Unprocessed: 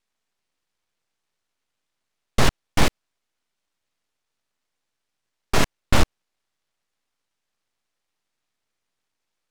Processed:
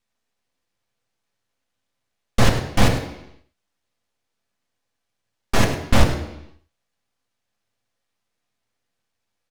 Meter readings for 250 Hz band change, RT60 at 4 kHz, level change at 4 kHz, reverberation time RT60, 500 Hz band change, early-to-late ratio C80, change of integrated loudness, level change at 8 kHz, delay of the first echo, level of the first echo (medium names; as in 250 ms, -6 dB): +4.5 dB, 0.85 s, +0.5 dB, 0.80 s, +3.5 dB, 8.0 dB, +2.5 dB, +0.5 dB, 102 ms, -12.0 dB